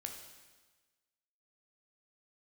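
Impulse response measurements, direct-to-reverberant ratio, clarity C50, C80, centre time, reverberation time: 2.5 dB, 5.5 dB, 7.5 dB, 35 ms, 1.3 s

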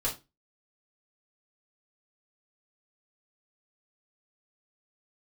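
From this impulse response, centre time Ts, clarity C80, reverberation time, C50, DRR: 19 ms, 19.0 dB, 0.25 s, 10.5 dB, -6.0 dB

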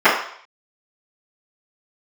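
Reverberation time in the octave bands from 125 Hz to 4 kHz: 0.30, 0.40, 0.60, 0.65, 0.60, 0.60 s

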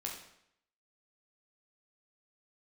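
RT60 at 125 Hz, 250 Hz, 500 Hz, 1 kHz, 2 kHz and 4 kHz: 0.70, 0.75, 0.75, 0.75, 0.70, 0.65 s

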